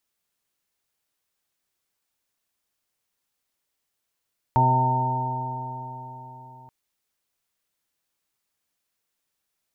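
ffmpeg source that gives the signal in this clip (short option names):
-f lavfi -i "aevalsrc='0.106*pow(10,-3*t/4.22)*sin(2*PI*126.08*t)+0.0376*pow(10,-3*t/4.22)*sin(2*PI*252.65*t)+0.0237*pow(10,-3*t/4.22)*sin(2*PI*380.2*t)+0.0119*pow(10,-3*t/4.22)*sin(2*PI*509.21*t)+0.0282*pow(10,-3*t/4.22)*sin(2*PI*640.16*t)+0.0376*pow(10,-3*t/4.22)*sin(2*PI*773.49*t)+0.15*pow(10,-3*t/4.22)*sin(2*PI*909.66*t)':d=2.13:s=44100"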